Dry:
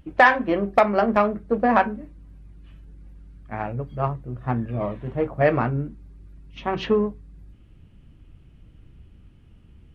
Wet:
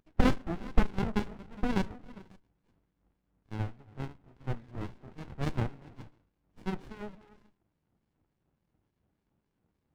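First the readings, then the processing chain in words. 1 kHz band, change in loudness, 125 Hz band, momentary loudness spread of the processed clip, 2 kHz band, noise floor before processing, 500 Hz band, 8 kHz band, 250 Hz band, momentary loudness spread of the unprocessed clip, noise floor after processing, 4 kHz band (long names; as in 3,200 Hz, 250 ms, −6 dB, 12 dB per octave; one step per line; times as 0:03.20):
−18.5 dB, −13.0 dB, −7.0 dB, 19 LU, −18.5 dB, −52 dBFS, −17.5 dB, can't be measured, −8.5 dB, 13 LU, −81 dBFS, −8.5 dB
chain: LFO wah 3.5 Hz 700–2,300 Hz, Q 2.6
echo through a band-pass that steps 135 ms, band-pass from 150 Hz, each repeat 1.4 octaves, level −8.5 dB
windowed peak hold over 65 samples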